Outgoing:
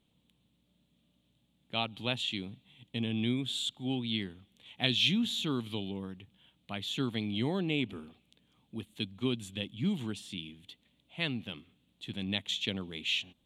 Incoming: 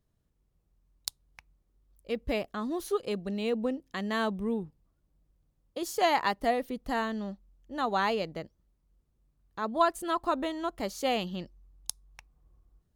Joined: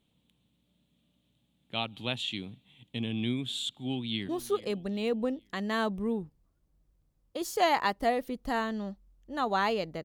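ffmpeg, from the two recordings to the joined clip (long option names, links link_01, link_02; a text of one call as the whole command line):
ffmpeg -i cue0.wav -i cue1.wav -filter_complex "[0:a]apad=whole_dur=10.04,atrim=end=10.04,atrim=end=4.292[link_01];[1:a]atrim=start=2.698:end=8.45[link_02];[link_01][link_02]acrossfade=duration=0.004:curve1=hsin:curve2=hsin,asplit=2[link_03][link_04];[link_04]afade=type=in:start_time=3.82:duration=0.01,afade=type=out:start_time=4.29:duration=0.01,aecho=0:1:420|840|1260:0.158489|0.0554713|0.0194149[link_05];[link_03][link_05]amix=inputs=2:normalize=0" out.wav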